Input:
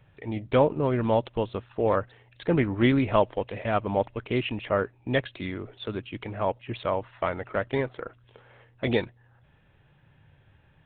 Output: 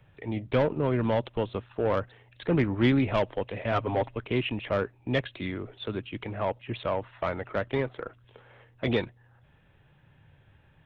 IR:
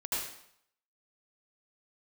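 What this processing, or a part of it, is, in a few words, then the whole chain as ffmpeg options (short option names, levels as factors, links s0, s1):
one-band saturation: -filter_complex "[0:a]asettb=1/sr,asplit=3[s0][s1][s2];[s0]atrim=end=3.714[s3];[s1]atrim=start=3.71:end=4.16,asetpts=PTS-STARTPTS,afade=t=in:d=0.004:c=qsin,afade=t=out:st=0.446:d=0.004:c=qsin,aecho=1:1:7.4:0.7,atrim=end_sample=19845[s4];[s2]atrim=start=4.156[s5];[s3][s4]acrossfade=d=0.004:c1=hsin:c2=qsin[s6];[s6][s5]acrossfade=d=0.004:c1=qsin:c2=hsin,acrossover=split=230|2700[s7][s8][s9];[s8]asoftclip=type=tanh:threshold=0.1[s10];[s7][s10][s9]amix=inputs=3:normalize=0"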